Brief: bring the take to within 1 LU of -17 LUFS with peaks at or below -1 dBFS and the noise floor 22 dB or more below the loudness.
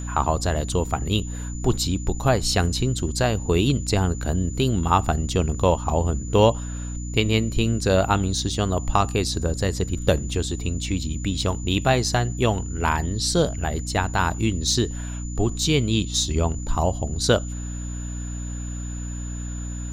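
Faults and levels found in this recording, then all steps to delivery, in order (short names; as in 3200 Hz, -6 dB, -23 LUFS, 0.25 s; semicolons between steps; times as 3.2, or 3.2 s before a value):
hum 60 Hz; harmonics up to 300 Hz; hum level -28 dBFS; steady tone 7000 Hz; tone level -39 dBFS; loudness -23.5 LUFS; peak -3.5 dBFS; loudness target -17.0 LUFS
-> notches 60/120/180/240/300 Hz; notch 7000 Hz, Q 30; gain +6.5 dB; limiter -1 dBFS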